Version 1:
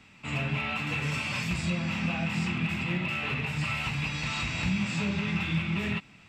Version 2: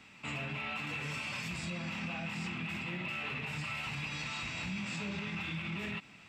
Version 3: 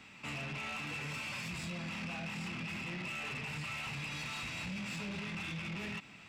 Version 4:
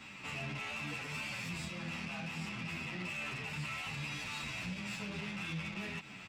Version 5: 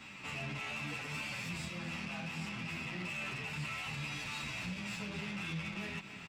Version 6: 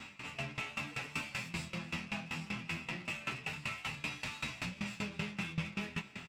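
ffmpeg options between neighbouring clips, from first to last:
ffmpeg -i in.wav -af "lowshelf=frequency=140:gain=-9.5,alimiter=level_in=6.5dB:limit=-24dB:level=0:latency=1:release=77,volume=-6.5dB" out.wav
ffmpeg -i in.wav -af "asoftclip=type=tanh:threshold=-38dB,volume=1.5dB" out.wav
ffmpeg -i in.wav -filter_complex "[0:a]alimiter=level_in=17.5dB:limit=-24dB:level=0:latency=1:release=123,volume=-17.5dB,asplit=2[link_01][link_02];[link_02]adelay=9.8,afreqshift=-2.5[link_03];[link_01][link_03]amix=inputs=2:normalize=1,volume=7.5dB" out.wav
ffmpeg -i in.wav -af "aecho=1:1:276:0.211" out.wav
ffmpeg -i in.wav -filter_complex "[0:a]asplit=2[link_01][link_02];[link_02]adelay=24,volume=-8.5dB[link_03];[link_01][link_03]amix=inputs=2:normalize=0,aeval=exprs='val(0)*pow(10,-19*if(lt(mod(5.2*n/s,1),2*abs(5.2)/1000),1-mod(5.2*n/s,1)/(2*abs(5.2)/1000),(mod(5.2*n/s,1)-2*abs(5.2)/1000)/(1-2*abs(5.2)/1000))/20)':channel_layout=same,volume=5.5dB" out.wav

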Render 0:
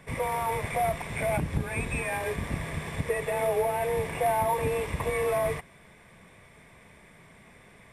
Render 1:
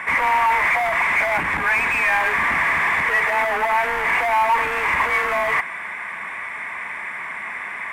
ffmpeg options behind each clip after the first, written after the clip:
ffmpeg -i in.wav -filter_complex "[0:a]asplit=2[link_01][link_02];[link_02]highpass=frequency=720:poles=1,volume=29dB,asoftclip=type=tanh:threshold=-14.5dB[link_03];[link_01][link_03]amix=inputs=2:normalize=0,lowpass=frequency=2400:poles=1,volume=-6dB,equalizer=frequency=125:width_type=o:width=1:gain=-11,equalizer=frequency=500:width_type=o:width=1:gain=-10,equalizer=frequency=1000:width_type=o:width=1:gain=8,equalizer=frequency=2000:width_type=o:width=1:gain=11,equalizer=frequency=4000:width_type=o:width=1:gain=-8,volume=-1.5dB" out.wav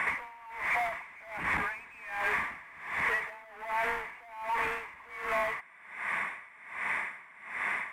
ffmpeg -i in.wav -af "acompressor=threshold=-26dB:ratio=6,aeval=exprs='val(0)*pow(10,-23*(0.5-0.5*cos(2*PI*1.3*n/s))/20)':channel_layout=same" out.wav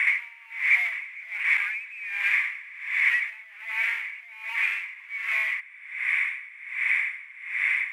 ffmpeg -i in.wav -af "highpass=frequency=2300:width_type=q:width=4.1,volume=1dB" out.wav

